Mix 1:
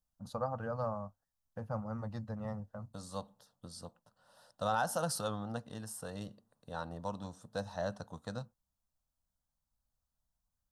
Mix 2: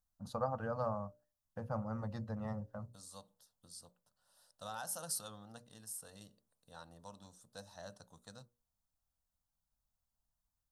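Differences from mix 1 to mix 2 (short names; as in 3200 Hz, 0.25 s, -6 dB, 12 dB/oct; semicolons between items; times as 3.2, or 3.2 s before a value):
second voice: add pre-emphasis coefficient 0.8; master: add notches 60/120/180/240/300/360/420/480/540/600 Hz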